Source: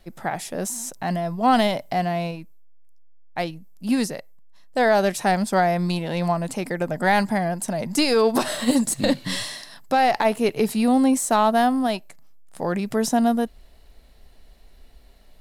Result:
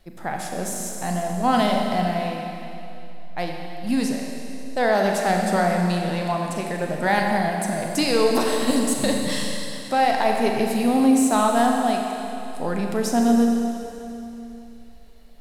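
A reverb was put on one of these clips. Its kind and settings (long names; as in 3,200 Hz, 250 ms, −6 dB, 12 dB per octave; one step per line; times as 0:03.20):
four-comb reverb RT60 2.9 s, combs from 30 ms, DRR 1 dB
level −2.5 dB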